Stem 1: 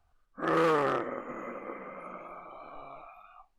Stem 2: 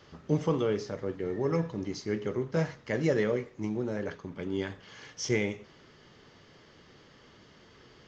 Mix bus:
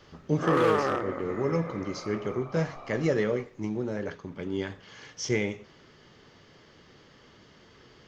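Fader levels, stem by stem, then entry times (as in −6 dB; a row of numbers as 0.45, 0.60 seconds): +1.0, +1.0 decibels; 0.00, 0.00 seconds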